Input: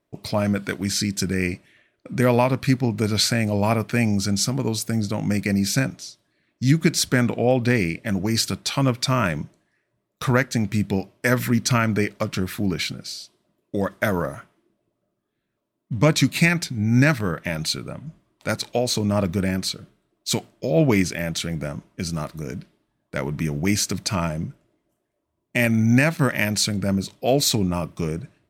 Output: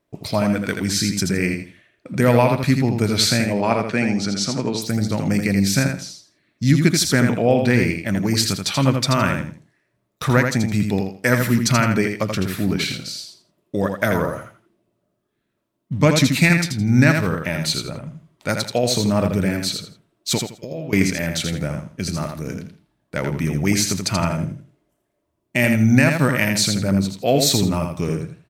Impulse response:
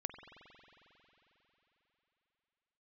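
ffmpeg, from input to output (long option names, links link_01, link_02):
-filter_complex "[0:a]asplit=3[link_01][link_02][link_03];[link_01]afade=type=out:start_time=3.44:duration=0.02[link_04];[link_02]highpass=180,lowpass=5700,afade=type=in:start_time=3.44:duration=0.02,afade=type=out:start_time=4.81:duration=0.02[link_05];[link_03]afade=type=in:start_time=4.81:duration=0.02[link_06];[link_04][link_05][link_06]amix=inputs=3:normalize=0,asettb=1/sr,asplit=3[link_07][link_08][link_09];[link_07]atrim=end=20.384[link_10];[link_08]atrim=start=20.38:end=20.93,asetpts=PTS-STARTPTS,afade=type=in:duration=0.004:curve=qsin,afade=type=out:start_time=0.546:duration=0.004:curve=qsin,acompressor=threshold=-34dB:ratio=4[link_11];[link_09]atrim=start=20.926[link_12];[link_10][link_11]acrossfade=duration=0.004:curve1=hsin:curve2=qsin[link_13];[link_13][link_12]acrossfade=duration=0.004:curve1=qsin:curve2=hsin,aecho=1:1:82|164|246:0.531|0.127|0.0306,volume=2dB"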